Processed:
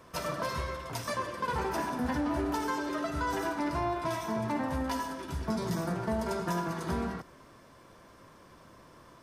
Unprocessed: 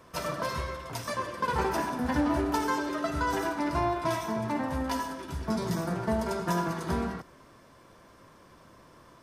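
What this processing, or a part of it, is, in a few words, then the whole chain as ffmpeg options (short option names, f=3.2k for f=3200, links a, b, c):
soft clipper into limiter: -af "asoftclip=type=tanh:threshold=-16.5dB,alimiter=limit=-22.5dB:level=0:latency=1:release=333"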